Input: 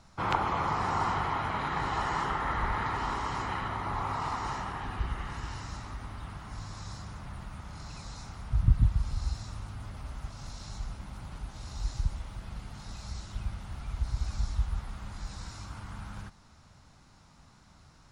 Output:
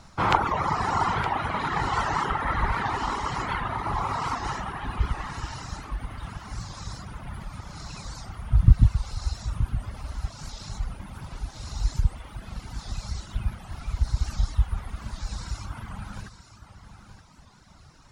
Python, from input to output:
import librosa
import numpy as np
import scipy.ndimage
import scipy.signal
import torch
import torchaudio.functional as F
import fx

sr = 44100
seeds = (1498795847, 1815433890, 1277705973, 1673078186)

y = fx.dereverb_blind(x, sr, rt60_s=2.0)
y = y + 10.0 ** (-11.5 / 20.0) * np.pad(y, (int(923 * sr / 1000.0), 0))[:len(y)]
y = fx.record_warp(y, sr, rpm=78.0, depth_cents=160.0)
y = y * 10.0 ** (8.0 / 20.0)